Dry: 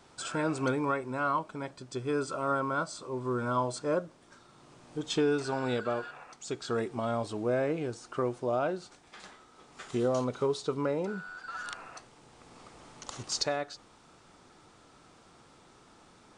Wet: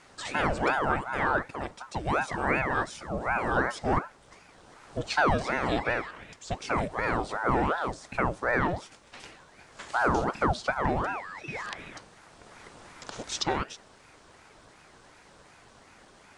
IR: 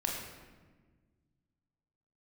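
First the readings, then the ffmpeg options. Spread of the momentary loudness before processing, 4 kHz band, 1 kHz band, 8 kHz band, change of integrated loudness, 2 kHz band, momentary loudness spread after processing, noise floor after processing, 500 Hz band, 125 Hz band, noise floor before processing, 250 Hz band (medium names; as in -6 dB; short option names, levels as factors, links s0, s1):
16 LU, +1.5 dB, +6.5 dB, -1.0 dB, +3.5 dB, +10.0 dB, 19 LU, -56 dBFS, -0.5 dB, +3.0 dB, -59 dBFS, +0.5 dB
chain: -filter_complex "[0:a]acrossover=split=5600[s0][s1];[s1]acompressor=threshold=0.00251:ratio=4:attack=1:release=60[s2];[s0][s2]amix=inputs=2:normalize=0,aeval=exprs='val(0)*sin(2*PI*690*n/s+690*0.75/2.7*sin(2*PI*2.7*n/s))':c=same,volume=2"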